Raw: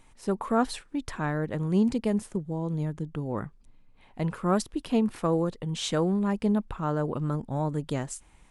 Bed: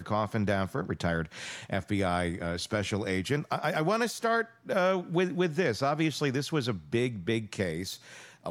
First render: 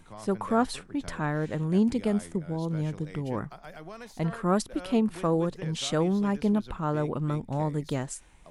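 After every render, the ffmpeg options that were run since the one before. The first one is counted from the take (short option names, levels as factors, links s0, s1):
-filter_complex "[1:a]volume=0.158[s0];[0:a][s0]amix=inputs=2:normalize=0"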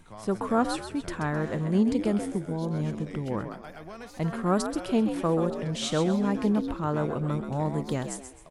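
-filter_complex "[0:a]asplit=5[s0][s1][s2][s3][s4];[s1]adelay=131,afreqshift=65,volume=0.376[s5];[s2]adelay=262,afreqshift=130,volume=0.124[s6];[s3]adelay=393,afreqshift=195,volume=0.0407[s7];[s4]adelay=524,afreqshift=260,volume=0.0135[s8];[s0][s5][s6][s7][s8]amix=inputs=5:normalize=0"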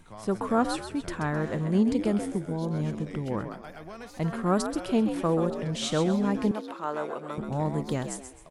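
-filter_complex "[0:a]asettb=1/sr,asplit=3[s0][s1][s2];[s0]atrim=end=6.514[s3];[s1]atrim=start=6.51:end=7.38,asetpts=PTS-STARTPTS,afade=t=in:d=0.004:c=qsin,afade=t=out:st=0.866:d=0.004:c=qsin,highpass=460[s4];[s2]atrim=start=7.376[s5];[s3][s4]acrossfade=d=0.004:c1=hsin:c2=qsin[s6];[s6][s5]acrossfade=d=0.004:c1=qsin:c2=hsin"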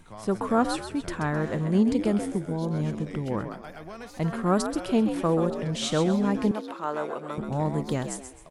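-af "volume=1.19"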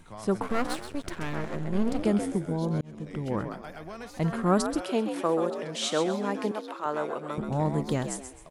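-filter_complex "[0:a]asettb=1/sr,asplit=3[s0][s1][s2];[s0]atrim=end=0.424[s3];[s1]atrim=start=0.42:end=2.03,asetpts=PTS-STARTPTS,afade=t=in:d=0.004:c=qsin,afade=t=out:st=1.606:d=0.004:c=qsin,aeval=exprs='max(val(0),0)':c=same[s4];[s2]atrim=start=2.026[s5];[s3][s4]acrossfade=d=0.004:c1=hsin:c2=qsin[s6];[s6][s5]acrossfade=d=0.004:c1=qsin:c2=hsin,asettb=1/sr,asplit=3[s7][s8][s9];[s7]atrim=end=4.814[s10];[s8]atrim=start=4.81:end=6.86,asetpts=PTS-STARTPTS,afade=t=in:d=0.004:c=qsin,afade=t=out:st=2.046:d=0.004:c=qsin,highpass=330[s11];[s9]atrim=start=6.856[s12];[s10][s11]acrossfade=d=0.004:c1=hsin:c2=qsin[s13];[s13][s12]acrossfade=d=0.004:c1=qsin:c2=hsin,asplit=2[s14][s15];[s14]atrim=end=2.81,asetpts=PTS-STARTPTS,afade=t=out:st=2.806:d=0.004:c=hsin[s16];[s15]atrim=start=2.81,asetpts=PTS-STARTPTS,afade=t=in:d=0.71:c=qsin[s17];[s16][s17]concat=n=2:v=0:a=1"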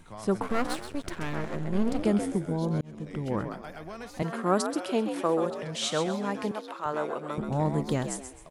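-filter_complex "[0:a]asettb=1/sr,asplit=3[s0][s1][s2];[s0]atrim=end=4.224[s3];[s1]atrim=start=4.22:end=4.86,asetpts=PTS-STARTPTS,afade=t=in:d=0.004:c=qsin,afade=t=out:st=0.636:d=0.004:c=qsin,highpass=240[s4];[s2]atrim=start=4.856[s5];[s3][s4]acrossfade=d=0.004:c1=hsin:c2=qsin[s6];[s6][s5]acrossfade=d=0.004:c1=qsin:c2=hsin,asplit=3[s7][s8][s9];[s7]afade=t=out:st=5.44:d=0.02[s10];[s8]asubboost=boost=7.5:cutoff=100,afade=t=in:st=5.44:d=0.02,afade=t=out:st=6.92:d=0.02[s11];[s9]afade=t=in:st=6.92:d=0.02[s12];[s10][s11][s12]amix=inputs=3:normalize=0"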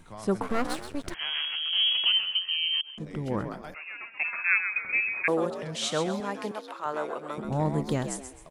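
-filter_complex "[0:a]asettb=1/sr,asplit=3[s0][s1][s2];[s0]atrim=end=1.144[s3];[s1]atrim=start=1.14:end=2.98,asetpts=PTS-STARTPTS,afade=t=in:d=0.004:c=qsin,afade=t=out:st=1.836:d=0.004:c=qsin,lowpass=f=2800:t=q:w=0.5098,lowpass=f=2800:t=q:w=0.6013,lowpass=f=2800:t=q:w=0.9,lowpass=f=2800:t=q:w=2.563,afreqshift=-3300[s4];[s2]atrim=start=2.976[s5];[s3][s4]acrossfade=d=0.004:c1=hsin:c2=qsin[s6];[s6][s5]acrossfade=d=0.004:c1=qsin:c2=hsin,asettb=1/sr,asplit=3[s7][s8][s9];[s7]atrim=end=3.744[s10];[s8]atrim=start=3.74:end=5.28,asetpts=PTS-STARTPTS,afade=t=in:d=0.004:c=qsin,afade=t=out:st=1.536:d=0.004:c=qsin,lowpass=f=2400:t=q:w=0.5098,lowpass=f=2400:t=q:w=0.6013,lowpass=f=2400:t=q:w=0.9,lowpass=f=2400:t=q:w=2.563,afreqshift=-2800[s11];[s9]atrim=start=5.276[s12];[s10][s11]acrossfade=d=0.004:c1=hsin:c2=qsin[s13];[s13][s12]acrossfade=d=0.004:c1=qsin:c2=hsin,asettb=1/sr,asplit=3[s14][s15][s16];[s14]atrim=end=6.204[s17];[s15]atrim=start=6.2:end=7.45,asetpts=PTS-STARTPTS,afade=t=in:d=0.004:c=qsin,afade=t=out:st=1.246:d=0.004:c=qsin,highpass=f=310:p=1[s18];[s16]atrim=start=7.446[s19];[s17][s18]acrossfade=d=0.004:c1=hsin:c2=qsin[s20];[s20][s19]acrossfade=d=0.004:c1=qsin:c2=hsin"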